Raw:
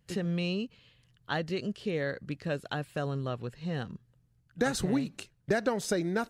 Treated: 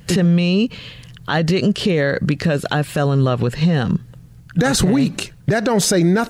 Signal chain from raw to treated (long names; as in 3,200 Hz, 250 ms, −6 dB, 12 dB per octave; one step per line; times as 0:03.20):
downward compressor, threshold −34 dBFS, peak gain reduction 11.5 dB
parametric band 170 Hz +4 dB 0.35 octaves
boost into a limiter +32.5 dB
level −7 dB